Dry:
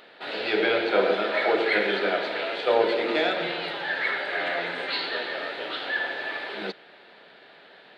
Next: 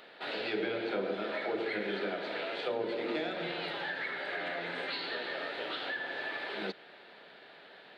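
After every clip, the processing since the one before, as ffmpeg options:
-filter_complex "[0:a]acrossover=split=300[s0][s1];[s1]acompressor=threshold=0.0282:ratio=10[s2];[s0][s2]amix=inputs=2:normalize=0,volume=0.708"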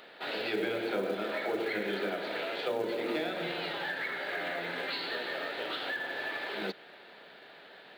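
-af "acrusher=bits=7:mode=log:mix=0:aa=0.000001,volume=1.19"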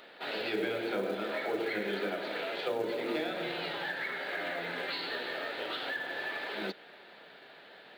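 -af "flanger=delay=3.1:depth=6.2:regen=-69:speed=0.45:shape=triangular,volume=1.5"

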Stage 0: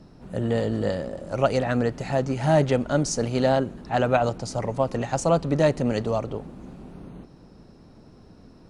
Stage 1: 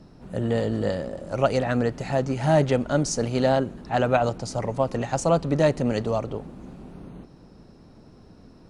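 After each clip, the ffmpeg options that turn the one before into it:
-af anull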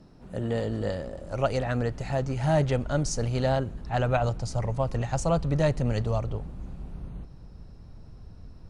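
-af "asubboost=boost=7:cutoff=100,volume=0.631"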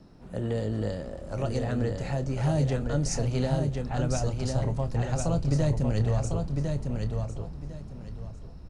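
-filter_complex "[0:a]acrossover=split=420|4400[s0][s1][s2];[s1]acompressor=threshold=0.0158:ratio=6[s3];[s0][s3][s2]amix=inputs=3:normalize=0,asplit=2[s4][s5];[s5]adelay=28,volume=0.251[s6];[s4][s6]amix=inputs=2:normalize=0,aecho=1:1:1053|2106|3159:0.596|0.137|0.0315"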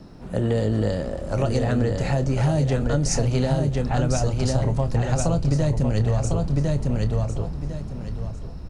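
-af "acompressor=threshold=0.0501:ratio=6,volume=2.82"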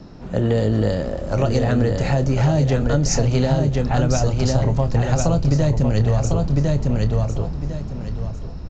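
-af "aresample=16000,aresample=44100,volume=1.5"

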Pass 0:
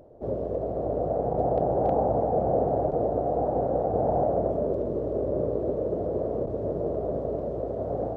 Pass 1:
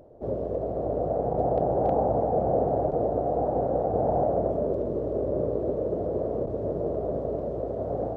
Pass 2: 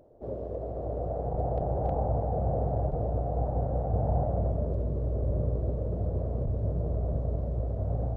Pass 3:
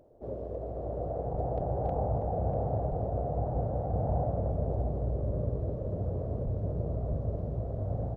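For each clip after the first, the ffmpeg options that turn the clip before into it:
-af anull
-af "asubboost=boost=10.5:cutoff=110,volume=0.501"
-filter_complex "[0:a]asplit=2[s0][s1];[s1]adelay=641.4,volume=0.447,highshelf=f=4000:g=-14.4[s2];[s0][s2]amix=inputs=2:normalize=0,volume=0.794"

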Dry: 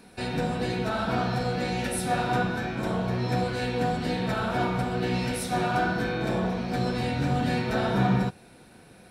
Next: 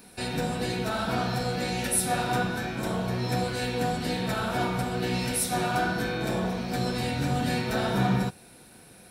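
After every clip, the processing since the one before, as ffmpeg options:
-af "aemphasis=mode=production:type=50kf,volume=0.841"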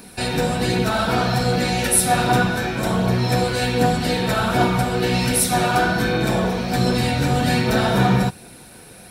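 -af "aphaser=in_gain=1:out_gain=1:delay=2.5:decay=0.25:speed=1.3:type=triangular,volume=2.66"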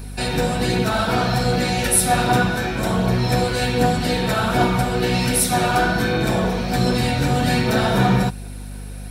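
-af "aeval=exprs='val(0)+0.0282*(sin(2*PI*50*n/s)+sin(2*PI*2*50*n/s)/2+sin(2*PI*3*50*n/s)/3+sin(2*PI*4*50*n/s)/4+sin(2*PI*5*50*n/s)/5)':c=same"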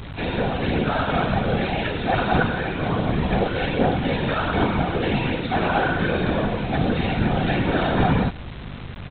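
-af "afftfilt=real='hypot(re,im)*cos(2*PI*random(0))':imag='hypot(re,im)*sin(2*PI*random(1))':win_size=512:overlap=0.75,aresample=8000,acrusher=bits=6:mix=0:aa=0.000001,aresample=44100,volume=1.5"

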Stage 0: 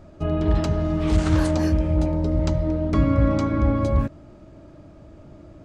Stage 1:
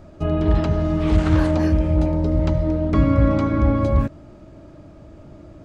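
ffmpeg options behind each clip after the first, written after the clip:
-filter_complex "[0:a]acrossover=split=3800[s0][s1];[s1]acompressor=threshold=0.00282:ratio=4:attack=1:release=60[s2];[s0][s2]amix=inputs=2:normalize=0,volume=1.33"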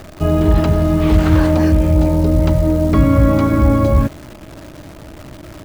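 -filter_complex "[0:a]asplit=2[s0][s1];[s1]alimiter=limit=0.211:level=0:latency=1:release=37,volume=0.944[s2];[s0][s2]amix=inputs=2:normalize=0,acrusher=bits=7:dc=4:mix=0:aa=0.000001,volume=1.12"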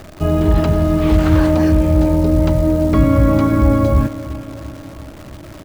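-af "aecho=1:1:344|688|1032|1376|1720|2064:0.168|0.099|0.0584|0.0345|0.0203|0.012,volume=0.891"

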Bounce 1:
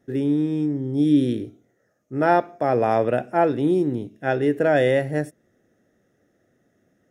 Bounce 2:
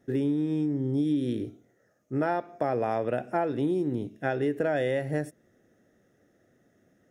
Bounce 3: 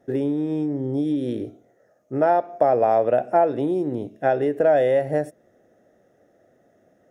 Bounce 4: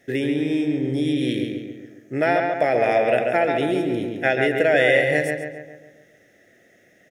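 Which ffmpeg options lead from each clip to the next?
-af "acompressor=threshold=0.0631:ratio=6"
-af "equalizer=f=650:w=1.1:g=12"
-filter_complex "[0:a]highshelf=f=1500:t=q:w=3:g=11.5,asplit=2[s0][s1];[s1]adelay=138,lowpass=f=3000:p=1,volume=0.668,asplit=2[s2][s3];[s3]adelay=138,lowpass=f=3000:p=1,volume=0.53,asplit=2[s4][s5];[s5]adelay=138,lowpass=f=3000:p=1,volume=0.53,asplit=2[s6][s7];[s7]adelay=138,lowpass=f=3000:p=1,volume=0.53,asplit=2[s8][s9];[s9]adelay=138,lowpass=f=3000:p=1,volume=0.53,asplit=2[s10][s11];[s11]adelay=138,lowpass=f=3000:p=1,volume=0.53,asplit=2[s12][s13];[s13]adelay=138,lowpass=f=3000:p=1,volume=0.53[s14];[s0][s2][s4][s6][s8][s10][s12][s14]amix=inputs=8:normalize=0"

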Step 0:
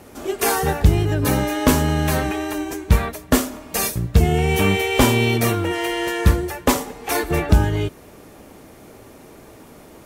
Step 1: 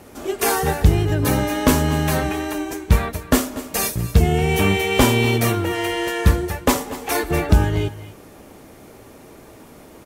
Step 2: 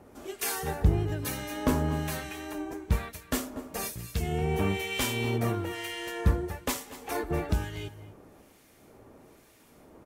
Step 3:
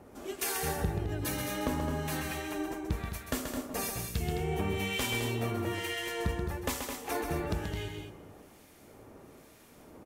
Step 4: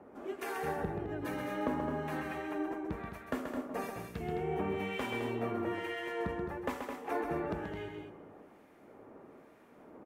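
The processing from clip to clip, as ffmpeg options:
-af "aecho=1:1:238|249:0.133|0.106"
-filter_complex "[0:a]acrossover=split=1600[s0][s1];[s0]aeval=exprs='val(0)*(1-0.7/2+0.7/2*cos(2*PI*1.1*n/s))':c=same[s2];[s1]aeval=exprs='val(0)*(1-0.7/2-0.7/2*cos(2*PI*1.1*n/s))':c=same[s3];[s2][s3]amix=inputs=2:normalize=0,volume=0.376"
-af "acompressor=threshold=0.0355:ratio=6,aecho=1:1:131.2|212.8:0.501|0.398"
-filter_complex "[0:a]acrossover=split=170 2200:gain=0.2 1 0.112[s0][s1][s2];[s0][s1][s2]amix=inputs=3:normalize=0"

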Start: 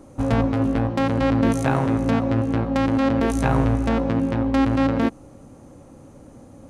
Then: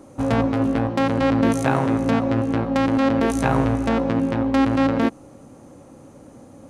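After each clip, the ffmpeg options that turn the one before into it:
-af "lowshelf=f=82:g=-12,volume=1.26"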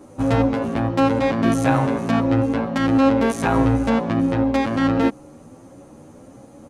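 -filter_complex "[0:a]asplit=2[s0][s1];[s1]adelay=10.2,afreqshift=1.5[s2];[s0][s2]amix=inputs=2:normalize=1,volume=1.58"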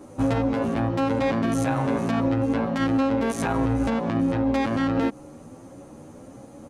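-af "alimiter=limit=0.188:level=0:latency=1:release=107"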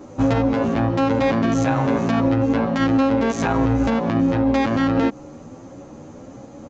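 -af "aresample=16000,aresample=44100,volume=1.68"

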